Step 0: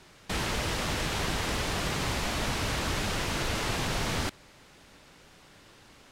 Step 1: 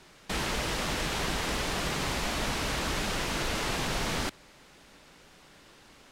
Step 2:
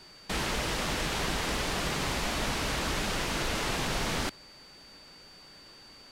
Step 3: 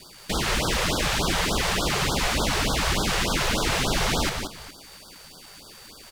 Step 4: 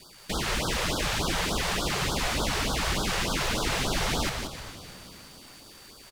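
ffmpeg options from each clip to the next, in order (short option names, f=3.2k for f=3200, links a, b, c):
-af "equalizer=f=96:w=2.4:g=-8.5"
-af "aeval=exprs='val(0)+0.00251*sin(2*PI*4600*n/s)':c=same"
-filter_complex "[0:a]acrusher=bits=7:mix=0:aa=0.5,asplit=2[a][b];[b]aecho=0:1:179|415:0.531|0.133[c];[a][c]amix=inputs=2:normalize=0,afftfilt=real='re*(1-between(b*sr/1024,230*pow(2300/230,0.5+0.5*sin(2*PI*3.4*pts/sr))/1.41,230*pow(2300/230,0.5+0.5*sin(2*PI*3.4*pts/sr))*1.41))':imag='im*(1-between(b*sr/1024,230*pow(2300/230,0.5+0.5*sin(2*PI*3.4*pts/sr))/1.41,230*pow(2300/230,0.5+0.5*sin(2*PI*3.4*pts/sr))*1.41))':win_size=1024:overlap=0.75,volume=6.5dB"
-filter_complex "[0:a]asplit=7[a][b][c][d][e][f][g];[b]adelay=306,afreqshift=-72,volume=-14.5dB[h];[c]adelay=612,afreqshift=-144,volume=-19.2dB[i];[d]adelay=918,afreqshift=-216,volume=-24dB[j];[e]adelay=1224,afreqshift=-288,volume=-28.7dB[k];[f]adelay=1530,afreqshift=-360,volume=-33.4dB[l];[g]adelay=1836,afreqshift=-432,volume=-38.2dB[m];[a][h][i][j][k][l][m]amix=inputs=7:normalize=0,volume=-4dB"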